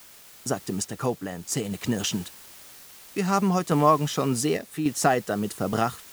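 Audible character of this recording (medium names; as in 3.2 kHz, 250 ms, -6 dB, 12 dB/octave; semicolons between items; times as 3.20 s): a quantiser's noise floor 8-bit, dither triangular; random-step tremolo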